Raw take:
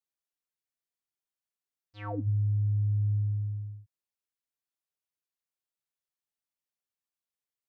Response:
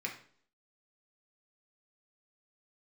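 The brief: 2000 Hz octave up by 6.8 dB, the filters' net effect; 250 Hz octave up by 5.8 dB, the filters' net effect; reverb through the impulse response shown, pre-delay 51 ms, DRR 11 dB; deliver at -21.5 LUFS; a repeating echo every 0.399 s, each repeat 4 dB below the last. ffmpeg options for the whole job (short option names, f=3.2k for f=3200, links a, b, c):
-filter_complex "[0:a]equalizer=f=250:t=o:g=7.5,equalizer=f=2k:t=o:g=8.5,aecho=1:1:399|798|1197|1596|1995|2394|2793|3192|3591:0.631|0.398|0.25|0.158|0.0994|0.0626|0.0394|0.0249|0.0157,asplit=2[a][b];[1:a]atrim=start_sample=2205,adelay=51[c];[b][c]afir=irnorm=-1:irlink=0,volume=-13.5dB[d];[a][d]amix=inputs=2:normalize=0,volume=10dB"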